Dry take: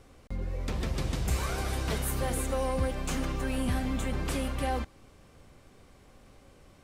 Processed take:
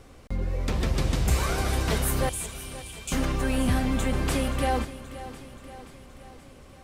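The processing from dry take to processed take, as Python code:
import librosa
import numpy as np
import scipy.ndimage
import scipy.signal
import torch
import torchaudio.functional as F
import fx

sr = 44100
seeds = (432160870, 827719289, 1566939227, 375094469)

p1 = fx.cheby_ripple_highpass(x, sr, hz=2300.0, ripple_db=6, at=(2.29, 3.12))
p2 = p1 + fx.echo_feedback(p1, sr, ms=527, feedback_pct=57, wet_db=-14.5, dry=0)
y = p2 * librosa.db_to_amplitude(5.5)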